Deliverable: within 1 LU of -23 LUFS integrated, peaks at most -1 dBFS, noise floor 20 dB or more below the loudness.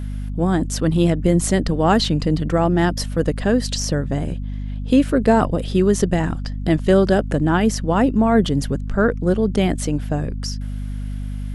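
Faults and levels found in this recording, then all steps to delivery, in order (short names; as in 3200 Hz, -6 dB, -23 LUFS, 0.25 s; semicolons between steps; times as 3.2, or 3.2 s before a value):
dropouts 2; longest dropout 2.0 ms; hum 50 Hz; harmonics up to 250 Hz; hum level -24 dBFS; loudness -19.0 LUFS; peak -2.0 dBFS; loudness target -23.0 LUFS
-> interpolate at 2.05/5.09, 2 ms; notches 50/100/150/200/250 Hz; gain -4 dB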